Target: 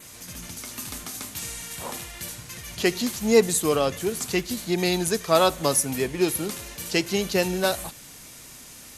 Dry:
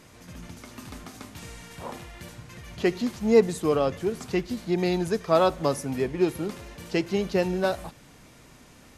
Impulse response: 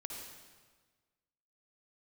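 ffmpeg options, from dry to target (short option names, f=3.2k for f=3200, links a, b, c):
-af "crystalizer=i=5:c=0,adynamicequalizer=threshold=0.00447:dfrequency=5100:dqfactor=5:tfrequency=5100:tqfactor=5:attack=5:release=100:ratio=0.375:range=2:mode=cutabove:tftype=bell"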